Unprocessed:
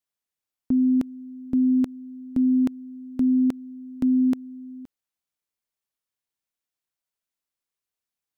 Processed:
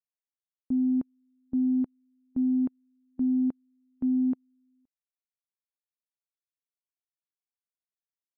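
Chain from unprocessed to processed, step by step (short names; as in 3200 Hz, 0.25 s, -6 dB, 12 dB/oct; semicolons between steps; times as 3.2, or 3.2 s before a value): LPF 1100 Hz 12 dB/oct; upward expander 2.5:1, over -35 dBFS; gain -5 dB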